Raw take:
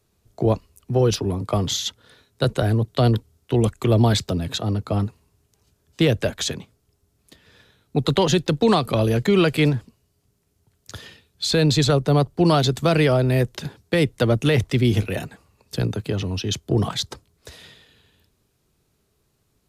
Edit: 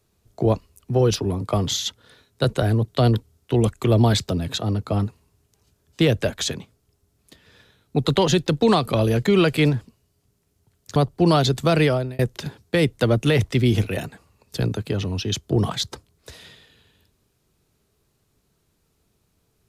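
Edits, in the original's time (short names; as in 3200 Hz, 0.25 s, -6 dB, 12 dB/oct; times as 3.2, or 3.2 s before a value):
10.96–12.15 cut
13.03–13.38 fade out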